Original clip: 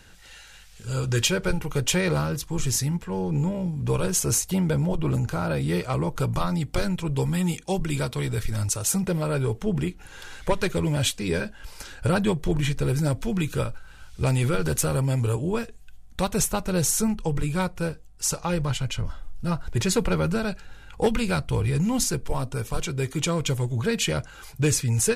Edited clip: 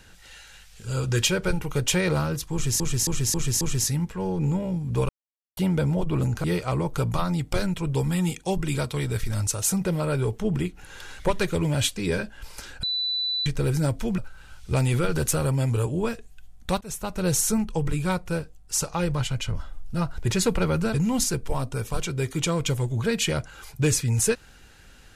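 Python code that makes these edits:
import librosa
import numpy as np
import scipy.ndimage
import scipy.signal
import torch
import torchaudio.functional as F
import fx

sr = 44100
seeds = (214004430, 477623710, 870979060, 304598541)

y = fx.edit(x, sr, fx.repeat(start_s=2.53, length_s=0.27, count=5),
    fx.silence(start_s=4.01, length_s=0.48),
    fx.cut(start_s=5.36, length_s=0.3),
    fx.bleep(start_s=12.05, length_s=0.63, hz=3980.0, db=-23.5),
    fx.cut(start_s=13.4, length_s=0.28),
    fx.fade_in_from(start_s=16.31, length_s=0.46, floor_db=-23.0),
    fx.cut(start_s=20.44, length_s=1.3), tone=tone)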